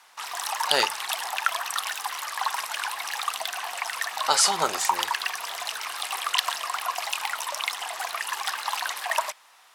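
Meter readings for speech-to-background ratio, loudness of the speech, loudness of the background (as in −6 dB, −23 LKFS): 4.0 dB, −24.5 LKFS, −28.5 LKFS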